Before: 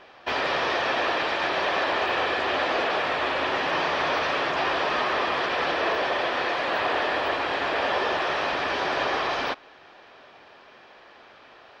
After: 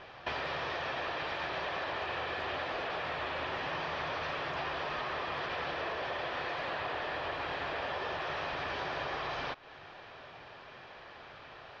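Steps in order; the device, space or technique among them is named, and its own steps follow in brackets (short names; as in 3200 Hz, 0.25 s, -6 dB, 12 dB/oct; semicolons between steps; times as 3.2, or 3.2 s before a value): jukebox (LPF 5900 Hz 12 dB/oct; resonant low shelf 180 Hz +7.5 dB, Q 1.5; compressor 5:1, threshold -35 dBFS, peak gain reduction 12.5 dB)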